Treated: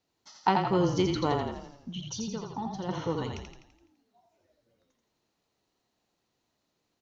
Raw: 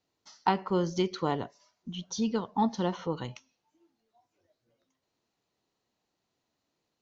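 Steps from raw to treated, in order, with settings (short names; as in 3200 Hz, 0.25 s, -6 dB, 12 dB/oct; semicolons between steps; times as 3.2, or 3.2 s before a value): 1.39–2.89 compressor 4:1, threshold -36 dBFS, peak gain reduction 12 dB; frequency-shifting echo 84 ms, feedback 52%, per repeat -30 Hz, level -4 dB; gain +1 dB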